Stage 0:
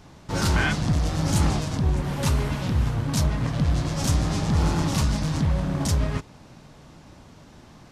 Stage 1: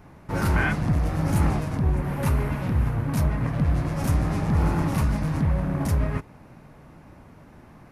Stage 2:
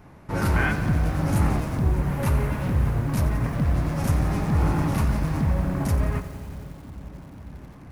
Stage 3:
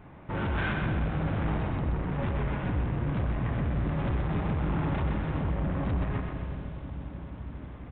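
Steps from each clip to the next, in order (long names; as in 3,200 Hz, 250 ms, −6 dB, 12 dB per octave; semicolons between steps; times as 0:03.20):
flat-topped bell 5,000 Hz −12 dB
delay with a low-pass on its return 490 ms, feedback 78%, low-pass 550 Hz, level −18.5 dB; on a send at −22 dB: convolution reverb RT60 0.40 s, pre-delay 3 ms; on the sum: feedback echo at a low word length 89 ms, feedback 80%, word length 7 bits, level −13 dB
soft clipping −26 dBFS, distortion −8 dB; on a send: echo with a time of its own for lows and highs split 300 Hz, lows 260 ms, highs 127 ms, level −5 dB; on the sum: downsampling to 8,000 Hz; level −1 dB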